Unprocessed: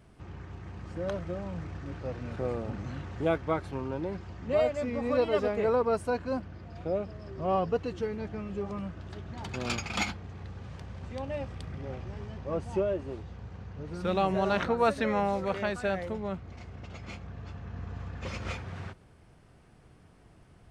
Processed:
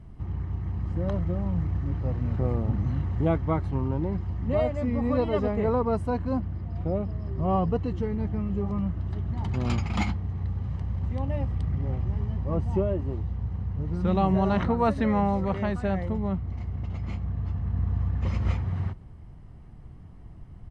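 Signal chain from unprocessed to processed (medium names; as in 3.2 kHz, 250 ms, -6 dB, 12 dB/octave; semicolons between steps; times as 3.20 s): tilt EQ -3 dB/octave; comb 1 ms, depth 36%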